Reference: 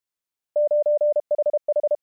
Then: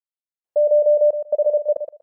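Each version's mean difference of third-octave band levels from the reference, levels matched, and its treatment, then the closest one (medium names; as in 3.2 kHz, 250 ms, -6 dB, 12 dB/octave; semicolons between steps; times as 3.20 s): 1.0 dB: peaking EQ 580 Hz +12 dB 1.7 oct; band-stop 640 Hz, Q 12; trance gate "..xxx.xx" 68 bpm -60 dB; on a send: thinning echo 120 ms, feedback 22%, high-pass 580 Hz, level -6.5 dB; on the sum: trim -7 dB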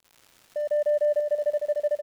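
4.5 dB: local Wiener filter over 25 samples; peak limiter -24.5 dBFS, peak gain reduction 7 dB; crackle 210 per s -41 dBFS; feedback delay 155 ms, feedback 45%, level -3.5 dB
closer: first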